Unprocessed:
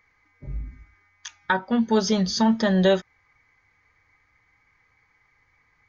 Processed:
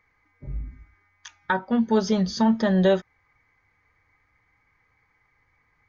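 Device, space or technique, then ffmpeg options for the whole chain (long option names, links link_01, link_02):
behind a face mask: -af "highshelf=frequency=2300:gain=-7.5"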